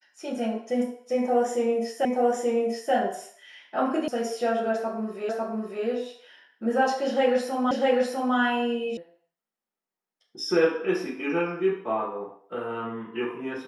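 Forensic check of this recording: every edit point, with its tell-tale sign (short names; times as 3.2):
2.05 repeat of the last 0.88 s
4.08 sound cut off
5.29 repeat of the last 0.55 s
7.71 repeat of the last 0.65 s
8.97 sound cut off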